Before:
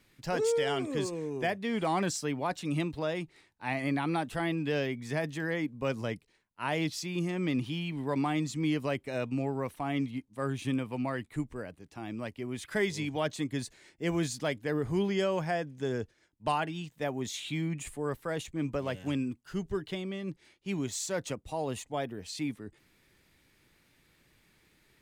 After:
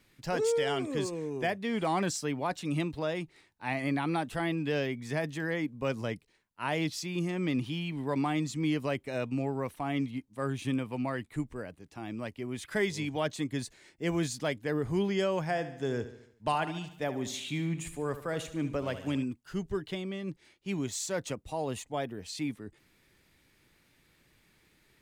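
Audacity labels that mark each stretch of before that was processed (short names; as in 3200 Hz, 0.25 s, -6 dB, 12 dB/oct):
15.420000	19.240000	feedback echo 73 ms, feedback 52%, level -12.5 dB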